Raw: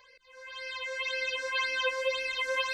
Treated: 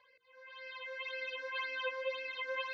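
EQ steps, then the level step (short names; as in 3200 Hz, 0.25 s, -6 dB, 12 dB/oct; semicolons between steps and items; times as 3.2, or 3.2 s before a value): BPF 110–4400 Hz; air absorption 140 m; notches 60/120/180/240/300/360/420/480 Hz; -6.5 dB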